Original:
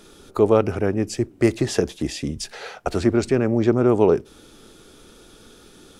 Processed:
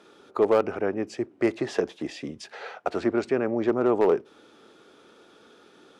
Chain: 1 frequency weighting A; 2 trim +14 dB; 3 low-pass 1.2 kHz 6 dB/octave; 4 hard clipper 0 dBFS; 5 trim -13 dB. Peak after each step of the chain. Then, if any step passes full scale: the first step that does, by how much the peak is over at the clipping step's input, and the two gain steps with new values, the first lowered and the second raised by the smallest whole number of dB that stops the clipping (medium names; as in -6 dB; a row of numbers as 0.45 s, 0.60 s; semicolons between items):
-7.5 dBFS, +6.5 dBFS, +5.0 dBFS, 0.0 dBFS, -13.0 dBFS; step 2, 5.0 dB; step 2 +9 dB, step 5 -8 dB